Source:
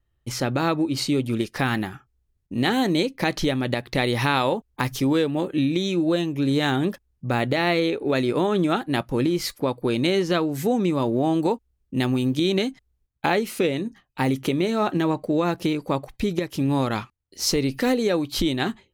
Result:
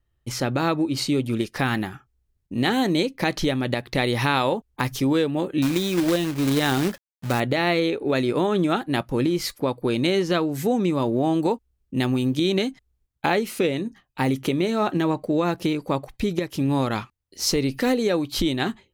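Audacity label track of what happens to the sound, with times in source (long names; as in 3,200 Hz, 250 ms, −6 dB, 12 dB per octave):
5.620000	7.400000	log-companded quantiser 4 bits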